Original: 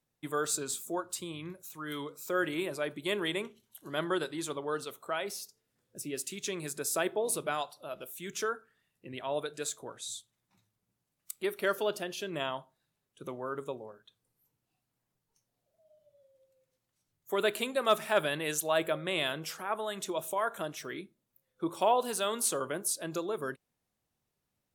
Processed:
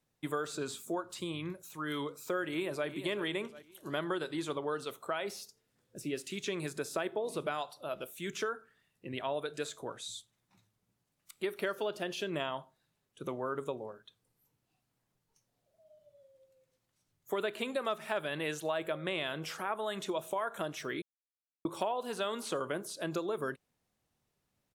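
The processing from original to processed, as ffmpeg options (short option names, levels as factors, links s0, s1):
-filter_complex "[0:a]asplit=2[s0][s1];[s1]afade=t=in:st=2.46:d=0.01,afade=t=out:st=2.88:d=0.01,aecho=0:1:370|740|1110:0.223872|0.0783552|0.0274243[s2];[s0][s2]amix=inputs=2:normalize=0,asplit=3[s3][s4][s5];[s3]atrim=end=21.02,asetpts=PTS-STARTPTS,afade=t=out:st=21.016:d=0.004:c=hsin[s6];[s4]atrim=start=21.02:end=21.65,asetpts=PTS-STARTPTS,volume=0[s7];[s5]atrim=start=21.65,asetpts=PTS-STARTPTS,afade=t=in:d=0.004:c=hsin[s8];[s6][s7][s8]concat=n=3:v=0:a=1,acrossover=split=3900[s9][s10];[s10]acompressor=threshold=0.00501:ratio=4:attack=1:release=60[s11];[s9][s11]amix=inputs=2:normalize=0,highshelf=f=11000:g=-6,acompressor=threshold=0.02:ratio=6,volume=1.41"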